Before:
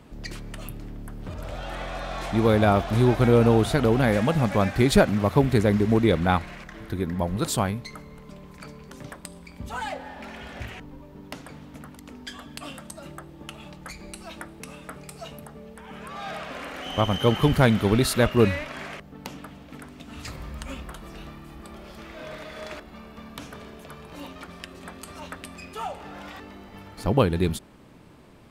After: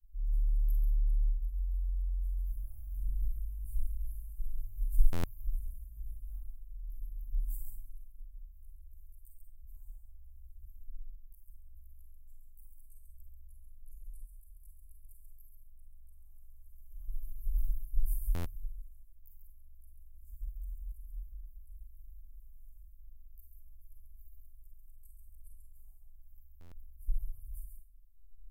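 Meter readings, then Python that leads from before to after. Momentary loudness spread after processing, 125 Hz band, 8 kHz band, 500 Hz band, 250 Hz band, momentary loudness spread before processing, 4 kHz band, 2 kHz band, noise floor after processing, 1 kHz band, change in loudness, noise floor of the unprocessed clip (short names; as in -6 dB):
24 LU, -16.5 dB, -22.0 dB, -36.5 dB, -33.0 dB, 22 LU, -31.5 dB, -32.0 dB, -55 dBFS, -33.0 dB, -16.5 dB, -46 dBFS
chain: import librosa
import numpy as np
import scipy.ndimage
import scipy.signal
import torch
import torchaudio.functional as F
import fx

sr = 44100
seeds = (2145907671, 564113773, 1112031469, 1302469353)

y = fx.chorus_voices(x, sr, voices=4, hz=0.33, base_ms=19, depth_ms=4.5, mix_pct=70)
y = scipy.signal.sosfilt(scipy.signal.cheby2(4, 70, [160.0, 4600.0], 'bandstop', fs=sr, output='sos'), y)
y = fx.high_shelf(y, sr, hz=7100.0, db=-10.5)
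y = y + 10.0 ** (-5.5 / 20.0) * np.pad(y, (int(136 * sr / 1000.0), 0))[:len(y)]
y = fx.rev_schroeder(y, sr, rt60_s=0.41, comb_ms=32, drr_db=2.0)
y = fx.buffer_glitch(y, sr, at_s=(5.12, 18.34, 26.6), block=512, repeats=9)
y = y * 10.0 ** (8.0 / 20.0)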